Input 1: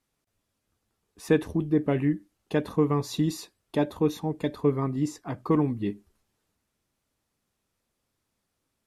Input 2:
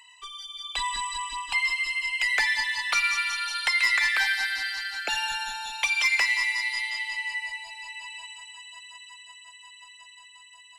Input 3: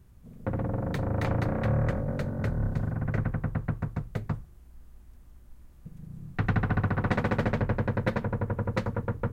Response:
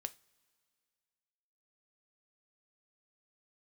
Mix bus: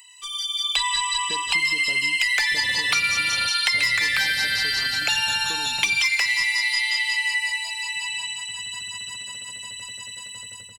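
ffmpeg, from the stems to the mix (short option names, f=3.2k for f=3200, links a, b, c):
-filter_complex "[0:a]volume=-7.5dB,asplit=2[a][b];[1:a]dynaudnorm=f=120:g=5:m=10dB,crystalizer=i=6:c=0,volume=-7dB[c];[2:a]alimiter=limit=-24dB:level=0:latency=1:release=165,aexciter=amount=3:drive=9.4:freq=2.7k,adelay=2100,volume=0.5dB[d];[b]apad=whole_len=504042[e];[d][e]sidechaingate=range=-22dB:threshold=-50dB:ratio=16:detection=peak[f];[a][f]amix=inputs=2:normalize=0,acompressor=threshold=-30dB:ratio=6,volume=0dB[g];[c][g]amix=inputs=2:normalize=0,acrossover=split=450|5300[h][i][j];[h]acompressor=threshold=-45dB:ratio=4[k];[i]acompressor=threshold=-20dB:ratio=4[l];[j]acompressor=threshold=-39dB:ratio=4[m];[k][l][m]amix=inputs=3:normalize=0"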